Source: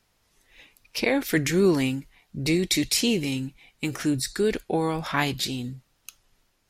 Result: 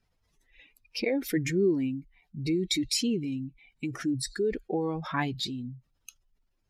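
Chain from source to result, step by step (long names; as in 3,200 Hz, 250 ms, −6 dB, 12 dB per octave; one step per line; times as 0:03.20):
expanding power law on the bin magnitudes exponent 1.8
level −4.5 dB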